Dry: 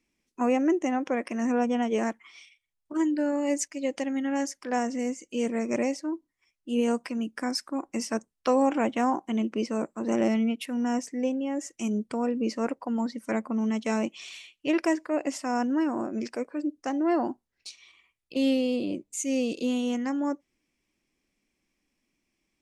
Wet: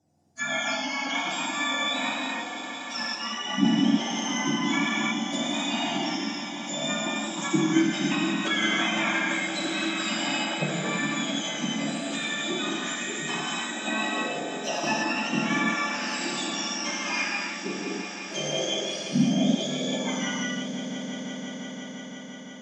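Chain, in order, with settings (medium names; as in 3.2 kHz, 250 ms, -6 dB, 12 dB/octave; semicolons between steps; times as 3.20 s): spectrum inverted on a logarithmic axis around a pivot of 1.3 kHz; 7.75–8.15 s: frequency weighting D; low-pass that closes with the level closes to 2.1 kHz, closed at -28.5 dBFS; echo with a slow build-up 172 ms, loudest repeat 5, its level -15.5 dB; gated-style reverb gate 360 ms flat, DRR -6 dB; 3.15–3.65 s: three-phase chorus; trim +2 dB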